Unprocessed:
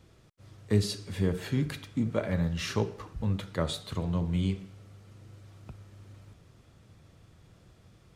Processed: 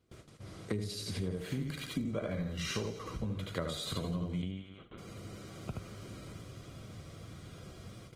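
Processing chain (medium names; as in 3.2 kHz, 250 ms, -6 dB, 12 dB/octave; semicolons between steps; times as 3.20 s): on a send: delay 75 ms -3 dB; 4.42–4.98 s: on the sum: LPC vocoder at 8 kHz pitch kept; feedback echo behind a high-pass 89 ms, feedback 43%, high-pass 2.8 kHz, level -4 dB; compression 8:1, threshold -41 dBFS, peak gain reduction 21 dB; comb of notches 890 Hz; gate with hold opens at -49 dBFS; trim +8.5 dB; Opus 20 kbps 48 kHz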